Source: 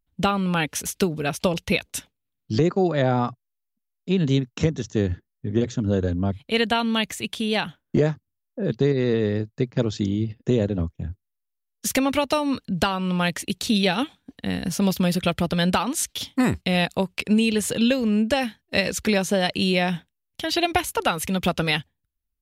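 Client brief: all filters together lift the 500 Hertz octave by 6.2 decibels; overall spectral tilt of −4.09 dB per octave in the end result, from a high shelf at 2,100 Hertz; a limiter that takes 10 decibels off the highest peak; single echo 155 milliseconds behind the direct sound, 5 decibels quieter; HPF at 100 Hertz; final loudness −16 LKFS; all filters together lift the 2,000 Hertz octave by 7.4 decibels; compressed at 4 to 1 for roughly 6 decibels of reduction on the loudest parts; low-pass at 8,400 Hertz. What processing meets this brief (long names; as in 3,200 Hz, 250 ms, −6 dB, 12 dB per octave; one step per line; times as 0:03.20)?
high-pass filter 100 Hz
low-pass filter 8,400 Hz
parametric band 500 Hz +7 dB
parametric band 2,000 Hz +5 dB
high-shelf EQ 2,100 Hz +6.5 dB
downward compressor 4 to 1, threshold −18 dBFS
brickwall limiter −13.5 dBFS
single-tap delay 155 ms −5 dB
level +8.5 dB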